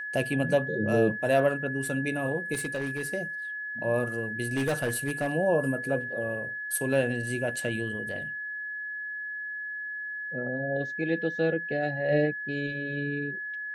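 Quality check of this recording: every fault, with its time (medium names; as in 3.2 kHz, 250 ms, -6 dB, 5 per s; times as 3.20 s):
whine 1.7 kHz -33 dBFS
2.53–3.07 s: clipped -26.5 dBFS
4.55–5.35 s: clipped -23 dBFS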